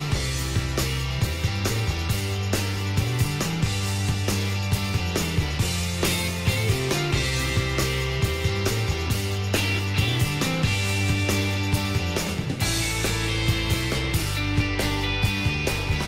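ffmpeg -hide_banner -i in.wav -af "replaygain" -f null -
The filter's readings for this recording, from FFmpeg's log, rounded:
track_gain = +7.5 dB
track_peak = 0.240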